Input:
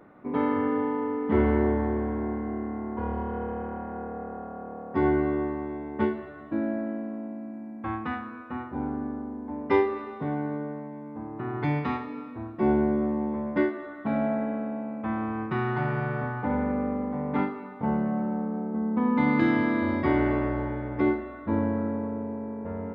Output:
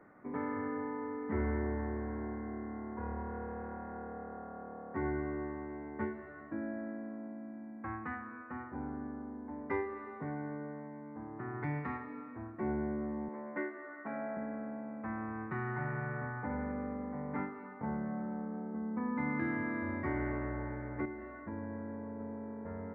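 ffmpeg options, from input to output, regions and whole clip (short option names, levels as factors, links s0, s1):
-filter_complex "[0:a]asettb=1/sr,asplit=3[s0][s1][s2];[s0]atrim=end=13.284[s3];[s1]atrim=start=13.28:end=14.37,asetpts=PTS-STARTPTS,afade=t=in:d=0.004:c=qsin,afade=t=out:st=1.086:d=0.004:c=qsin,highpass=290,lowpass=3000,aemphasis=mode=production:type=50fm[s4];[s2]atrim=start=14.366[s5];[s3][s4]acrossfade=d=0.004:c1=hsin:c2=qsin[s6];[s6][s5]acrossfade=d=0.004:c1=qsin:c2=hsin,asettb=1/sr,asplit=3[s7][s8][s9];[s7]atrim=end=21.054[s10];[s8]atrim=start=21.05:end=22.2,asetpts=PTS-STARTPTS,afade=t=in:d=0.004:c=qsin,afade=t=out:st=1.146:d=0.004:c=qsin,bandreject=f=1300:w=11,acompressor=threshold=0.0282:ratio=2.5:attack=3.2:release=140:knee=1:detection=peak[s11];[s9]atrim=start=22.196[s12];[s10][s11]acrossfade=d=0.004:c1=hsin:c2=qsin[s13];[s13][s12]acrossfade=d=0.004:c1=qsin:c2=hsin,highshelf=f=2500:t=q:w=3:g=-9,acrossover=split=140[s14][s15];[s15]acompressor=threshold=0.0158:ratio=1.5[s16];[s14][s16]amix=inputs=2:normalize=0,volume=0.422"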